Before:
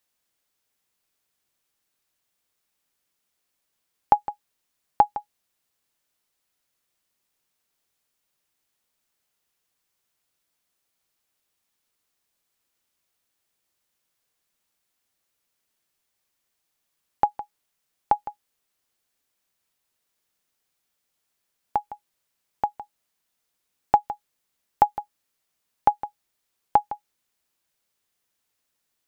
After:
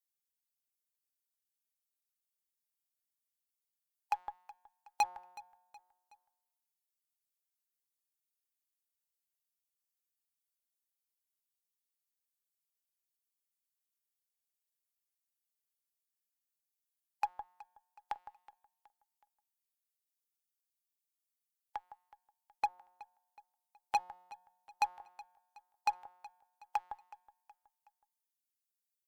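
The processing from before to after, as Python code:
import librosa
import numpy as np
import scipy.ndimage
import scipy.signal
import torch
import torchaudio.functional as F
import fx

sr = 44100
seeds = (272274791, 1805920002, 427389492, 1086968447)

y = fx.bin_expand(x, sr, power=1.5)
y = fx.peak_eq(y, sr, hz=190.0, db=15.0, octaves=2.5)
y = fx.filter_lfo_highpass(y, sr, shape='saw_up', hz=3.8, low_hz=810.0, high_hz=2800.0, q=0.99)
y = fx.comb_fb(y, sr, f0_hz=180.0, decay_s=1.1, harmonics='all', damping=0.0, mix_pct=40)
y = fx.cheby_harmonics(y, sr, harmonics=(8,), levels_db=(-33,), full_scale_db=-26.5)
y = fx.echo_feedback(y, sr, ms=371, feedback_pct=45, wet_db=-20.0)
y = y * 10.0 ** (2.0 / 20.0)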